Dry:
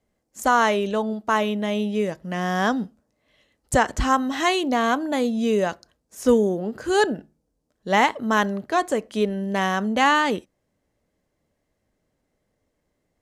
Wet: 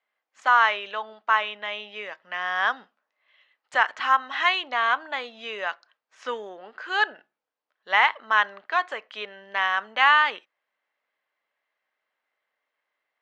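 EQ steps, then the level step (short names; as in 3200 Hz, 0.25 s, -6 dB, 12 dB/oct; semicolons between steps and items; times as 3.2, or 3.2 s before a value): Butterworth band-pass 1900 Hz, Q 0.79; air absorption 63 m; +4.0 dB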